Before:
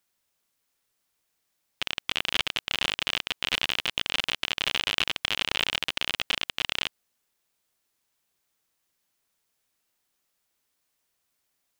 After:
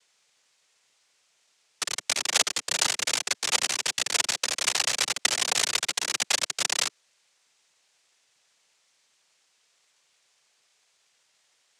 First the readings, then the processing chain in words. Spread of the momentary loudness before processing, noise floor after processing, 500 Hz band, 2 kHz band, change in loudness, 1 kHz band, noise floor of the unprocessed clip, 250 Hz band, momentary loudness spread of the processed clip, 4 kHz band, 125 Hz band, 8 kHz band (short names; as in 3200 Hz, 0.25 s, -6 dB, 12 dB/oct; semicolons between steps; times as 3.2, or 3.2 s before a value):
3 LU, -69 dBFS, +2.5 dB, -0.5 dB, +2.5 dB, +2.5 dB, -77 dBFS, -3.0 dB, 4 LU, 0.0 dB, -5.0 dB, +17.0 dB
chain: limiter -13 dBFS, peak gain reduction 10 dB; Chebyshev band-stop 180–770 Hz, order 3; noise vocoder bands 3; gain +7 dB